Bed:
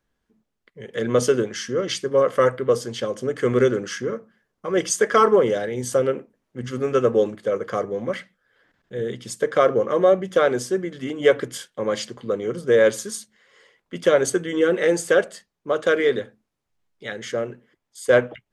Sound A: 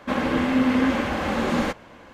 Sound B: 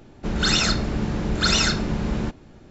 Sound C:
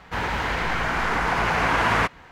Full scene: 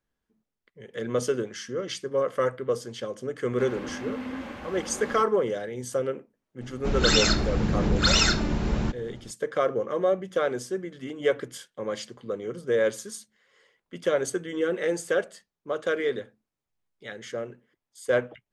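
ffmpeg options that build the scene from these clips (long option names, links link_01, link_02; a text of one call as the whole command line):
ffmpeg -i bed.wav -i cue0.wav -i cue1.wav -filter_complex "[0:a]volume=-7.5dB[link_01];[2:a]aphaser=in_gain=1:out_gain=1:delay=3.4:decay=0.26:speed=0.81:type=sinusoidal[link_02];[1:a]atrim=end=2.13,asetpts=PTS-STARTPTS,volume=-14.5dB,afade=type=in:duration=0.004:curve=hsin,afade=type=out:start_time=2.126:duration=0.004:curve=hsin,adelay=3510[link_03];[link_02]atrim=end=2.7,asetpts=PTS-STARTPTS,volume=-1.5dB,afade=type=in:duration=0.004:curve=hsin,afade=type=out:start_time=2.696:duration=0.004:curve=hsin,adelay=6610[link_04];[link_01][link_03][link_04]amix=inputs=3:normalize=0" out.wav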